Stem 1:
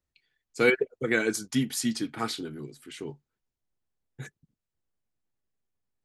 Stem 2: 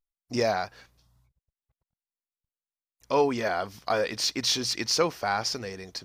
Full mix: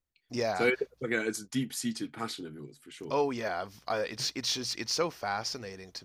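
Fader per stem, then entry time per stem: -5.0 dB, -5.5 dB; 0.00 s, 0.00 s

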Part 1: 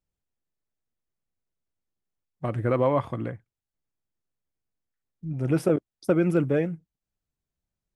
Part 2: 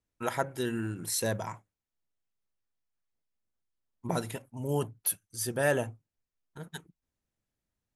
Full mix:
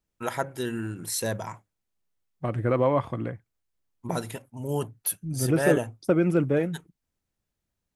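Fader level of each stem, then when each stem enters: 0.0 dB, +1.5 dB; 0.00 s, 0.00 s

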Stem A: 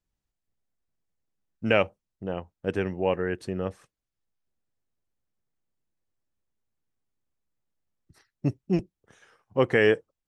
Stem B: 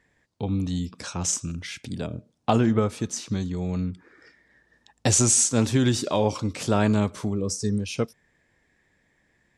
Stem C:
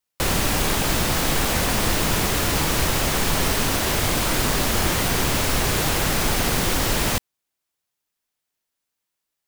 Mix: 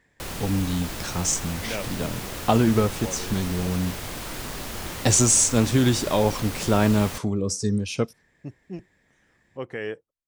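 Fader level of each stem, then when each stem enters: -11.5 dB, +1.5 dB, -12.5 dB; 0.00 s, 0.00 s, 0.00 s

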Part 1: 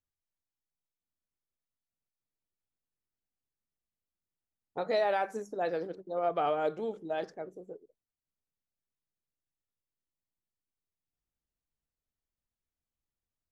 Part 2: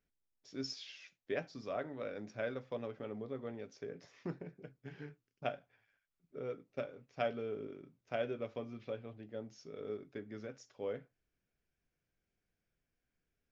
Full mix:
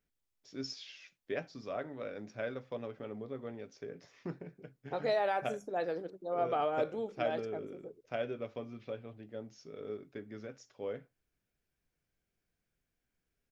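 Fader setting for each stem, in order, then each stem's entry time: -2.5 dB, +0.5 dB; 0.15 s, 0.00 s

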